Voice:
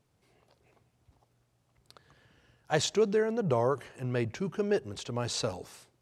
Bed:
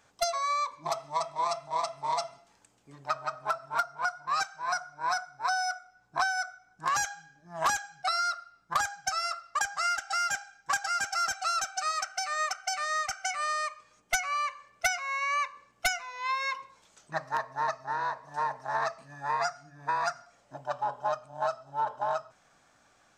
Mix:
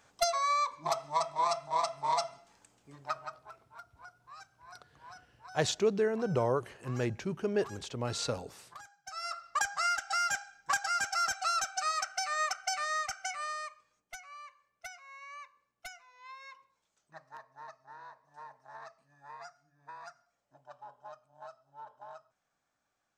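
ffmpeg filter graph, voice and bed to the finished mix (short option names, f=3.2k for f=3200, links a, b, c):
-filter_complex "[0:a]adelay=2850,volume=-2dB[a];[1:a]volume=20.5dB,afade=t=out:st=2.76:d=0.75:silence=0.0794328,afade=t=in:st=9.04:d=0.41:silence=0.0944061,afade=t=out:st=12.69:d=1.44:silence=0.141254[b];[a][b]amix=inputs=2:normalize=0"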